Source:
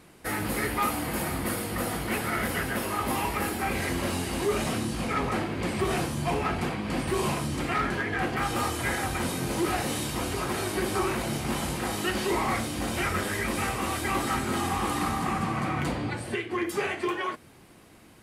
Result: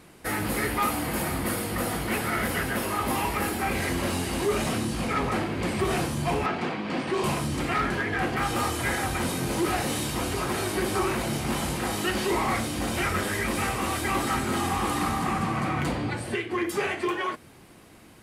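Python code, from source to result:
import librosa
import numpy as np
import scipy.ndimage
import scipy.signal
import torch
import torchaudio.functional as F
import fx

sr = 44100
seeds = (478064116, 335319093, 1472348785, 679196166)

p1 = fx.bandpass_edges(x, sr, low_hz=190.0, high_hz=5000.0, at=(6.46, 7.24))
p2 = np.clip(p1, -10.0 ** (-29.0 / 20.0), 10.0 ** (-29.0 / 20.0))
y = p1 + (p2 * 10.0 ** (-11.0 / 20.0))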